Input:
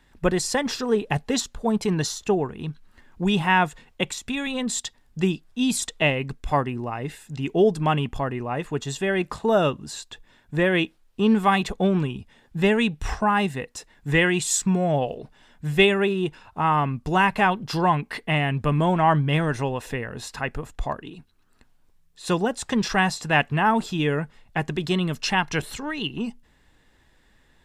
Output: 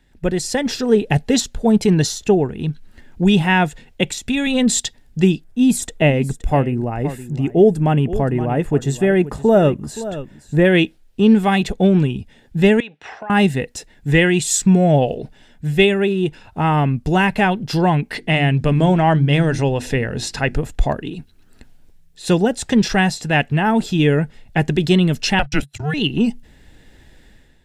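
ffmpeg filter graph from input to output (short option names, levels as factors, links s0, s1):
-filter_complex "[0:a]asettb=1/sr,asplit=3[s0][s1][s2];[s0]atrim=end=5.444[s3];[s1]atrim=start=5.44:end=10.65,asetpts=PTS-STARTPTS,afade=t=in:d=0.004:c=qsin,afade=t=out:st=5.206:d=0.004:c=qsin,equalizer=f=4000:t=o:w=1.7:g=-10,aecho=1:1:521:0.178,atrim=end_sample=229761[s4];[s2]atrim=start=10.646[s5];[s3][s4]acrossfade=d=0.004:c1=hsin:c2=qsin[s6];[s6][s5]acrossfade=d=0.004:c1=qsin:c2=hsin,asettb=1/sr,asplit=3[s7][s8][s9];[s7]atrim=end=12.804[s10];[s8]atrim=start=12.8:end=13.3,asetpts=PTS-STARTPTS,afade=t=in:d=0.004:c=qsin,afade=t=out:st=0.496:d=0.004:c=qsin,highpass=630,lowpass=2800,acompressor=threshold=0.02:ratio=4:attack=3.2:release=140:knee=1:detection=peak[s11];[s9]atrim=start=13.296[s12];[s10][s11]acrossfade=d=0.004:c1=hsin:c2=qsin[s13];[s13][s12]acrossfade=d=0.004:c1=qsin:c2=hsin,asettb=1/sr,asplit=3[s14][s15][s16];[s14]atrim=end=18.154[s17];[s15]atrim=start=18.15:end=20.57,asetpts=PTS-STARTPTS,afade=t=in:d=0.004:c=qsin,afade=t=out:st=2.416:d=0.004:c=qsin,lowpass=11000,equalizer=f=5200:w=1.5:g=4,bandreject=f=50:t=h:w=6,bandreject=f=100:t=h:w=6,bandreject=f=150:t=h:w=6,bandreject=f=200:t=h:w=6,bandreject=f=250:t=h:w=6,bandreject=f=300:t=h:w=6,bandreject=f=350:t=h:w=6[s18];[s16]atrim=start=20.566[s19];[s17][s18]acrossfade=d=0.004:c1=hsin:c2=qsin[s20];[s20][s19]acrossfade=d=0.004:c1=qsin:c2=hsin,asettb=1/sr,asplit=3[s21][s22][s23];[s21]atrim=end=25.394[s24];[s22]atrim=start=25.39:end=25.94,asetpts=PTS-STARTPTS,afade=t=in:d=0.004:c=qsin,afade=t=out:st=0.546:d=0.004:c=qsin,agate=range=0.00355:threshold=0.0224:ratio=16:release=100:detection=peak,acompressor=mode=upward:threshold=0.0355:ratio=2.5:attack=3.2:release=140:knee=2.83:detection=peak,afreqshift=-150[s25];[s23]atrim=start=25.936[s26];[s24][s25]acrossfade=d=0.004:c1=hsin:c2=qsin[s27];[s27][s26]acrossfade=d=0.004:c1=qsin:c2=hsin,lowshelf=f=450:g=4,dynaudnorm=f=120:g=7:m=3.76,equalizer=f=1100:t=o:w=0.51:g=-11,volume=0.891"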